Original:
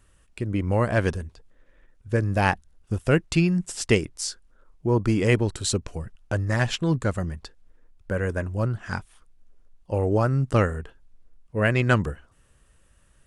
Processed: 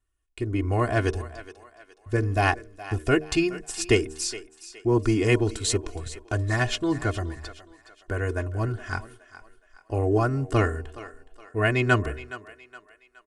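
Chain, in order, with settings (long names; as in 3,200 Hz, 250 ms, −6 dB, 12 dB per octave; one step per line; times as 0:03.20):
hum removal 76.67 Hz, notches 8
noise gate −47 dBFS, range −21 dB
comb filter 2.8 ms, depth 86%
feedback echo with a high-pass in the loop 418 ms, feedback 43%, high-pass 460 Hz, level −14.5 dB
level −2 dB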